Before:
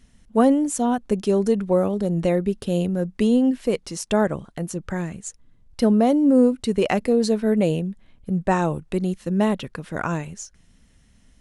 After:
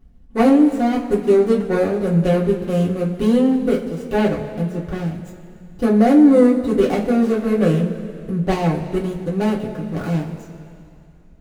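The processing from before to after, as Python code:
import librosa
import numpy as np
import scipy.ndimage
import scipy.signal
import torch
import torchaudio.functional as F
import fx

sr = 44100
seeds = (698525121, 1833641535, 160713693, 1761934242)

y = scipy.signal.medfilt(x, 41)
y = fx.rev_double_slope(y, sr, seeds[0], early_s=0.21, late_s=2.6, knee_db=-18, drr_db=-4.0)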